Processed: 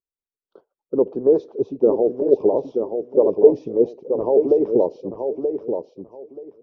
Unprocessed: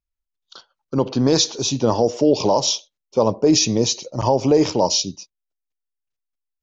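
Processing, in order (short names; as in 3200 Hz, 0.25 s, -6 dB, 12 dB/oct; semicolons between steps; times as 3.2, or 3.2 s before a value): harmonic-percussive split harmonic -16 dB; synth low-pass 430 Hz, resonance Q 3.4; low shelf 260 Hz -12 dB; on a send: feedback echo 0.93 s, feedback 20%, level -6.5 dB; on the sum: gain +2 dB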